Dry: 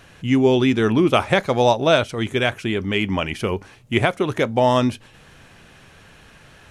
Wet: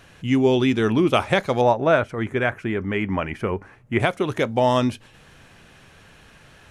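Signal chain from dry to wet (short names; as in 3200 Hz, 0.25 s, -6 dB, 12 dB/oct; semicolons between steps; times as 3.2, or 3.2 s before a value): 1.61–4 resonant high shelf 2500 Hz -10.5 dB, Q 1.5; gain -2 dB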